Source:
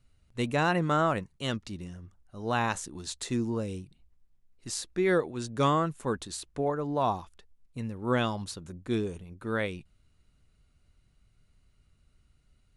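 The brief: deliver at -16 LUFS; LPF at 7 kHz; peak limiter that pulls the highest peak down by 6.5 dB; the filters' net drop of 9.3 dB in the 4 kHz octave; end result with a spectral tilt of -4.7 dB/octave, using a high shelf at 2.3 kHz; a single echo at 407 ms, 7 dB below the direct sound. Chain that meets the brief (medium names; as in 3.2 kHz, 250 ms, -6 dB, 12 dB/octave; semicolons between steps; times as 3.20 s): low-pass 7 kHz; treble shelf 2.3 kHz -6.5 dB; peaking EQ 4 kHz -6 dB; peak limiter -20.5 dBFS; delay 407 ms -7 dB; trim +17 dB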